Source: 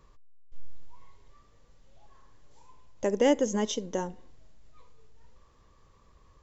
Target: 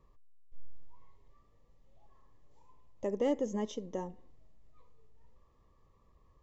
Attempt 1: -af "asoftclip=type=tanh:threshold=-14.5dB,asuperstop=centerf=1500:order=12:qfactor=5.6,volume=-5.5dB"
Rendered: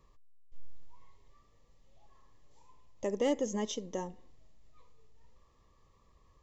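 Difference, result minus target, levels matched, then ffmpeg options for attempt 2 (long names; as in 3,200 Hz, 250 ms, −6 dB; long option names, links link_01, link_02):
4,000 Hz band +6.5 dB
-af "asoftclip=type=tanh:threshold=-14.5dB,asuperstop=centerf=1500:order=12:qfactor=5.6,highshelf=frequency=2100:gain=-10.5,volume=-5.5dB"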